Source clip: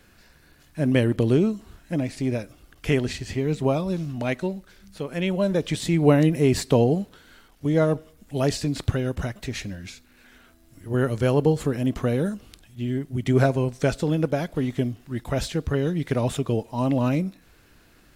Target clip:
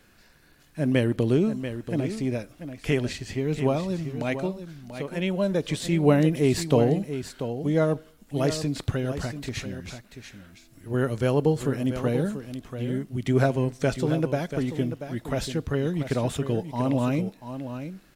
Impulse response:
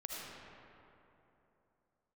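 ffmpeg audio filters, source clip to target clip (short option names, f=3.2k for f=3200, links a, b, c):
-filter_complex "[0:a]equalizer=f=62:t=o:w=0.77:g=-7,asplit=2[a][b];[b]aecho=0:1:687:0.316[c];[a][c]amix=inputs=2:normalize=0,volume=-2dB"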